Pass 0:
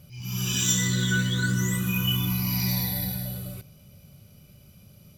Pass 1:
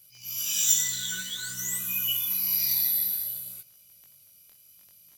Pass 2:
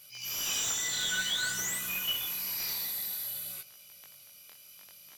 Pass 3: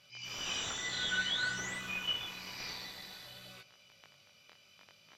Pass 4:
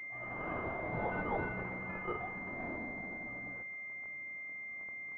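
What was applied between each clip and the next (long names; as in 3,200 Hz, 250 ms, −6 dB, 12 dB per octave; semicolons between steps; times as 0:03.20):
first-order pre-emphasis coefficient 0.97; surface crackle 11 per second −42 dBFS; chorus effect 0.55 Hz, delay 16 ms, depth 7.1 ms; level +6.5 dB
downward compressor 2.5 to 1, threshold −31 dBFS, peak gain reduction 9.5 dB; mid-hump overdrive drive 18 dB, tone 2,800 Hz, clips at −17.5 dBFS
high-frequency loss of the air 170 metres; level +1 dB
switching amplifier with a slow clock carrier 2,100 Hz; level +3.5 dB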